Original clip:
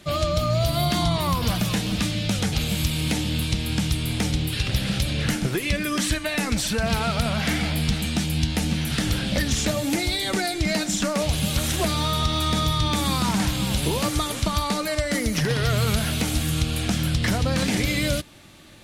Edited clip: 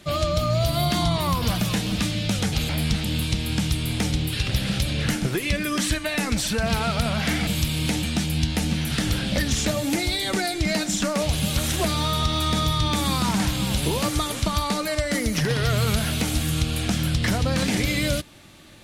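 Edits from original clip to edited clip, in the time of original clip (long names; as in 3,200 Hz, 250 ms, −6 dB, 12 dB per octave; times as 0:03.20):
0:02.69–0:03.25: swap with 0:07.67–0:08.03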